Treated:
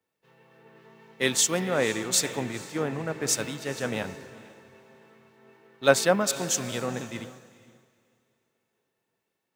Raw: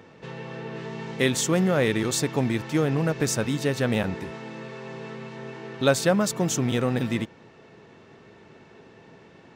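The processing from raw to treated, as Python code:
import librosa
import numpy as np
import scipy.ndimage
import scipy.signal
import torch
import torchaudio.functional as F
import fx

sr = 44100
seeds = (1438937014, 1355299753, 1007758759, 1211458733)

p1 = fx.low_shelf(x, sr, hz=300.0, db=-9.5)
p2 = fx.quant_dither(p1, sr, seeds[0], bits=8, dither='triangular')
p3 = p1 + (p2 * 10.0 ** (-10.5 / 20.0))
p4 = fx.echo_diffused(p3, sr, ms=474, feedback_pct=43, wet_db=-9.5)
p5 = fx.band_widen(p4, sr, depth_pct=100)
y = p5 * 10.0 ** (-5.5 / 20.0)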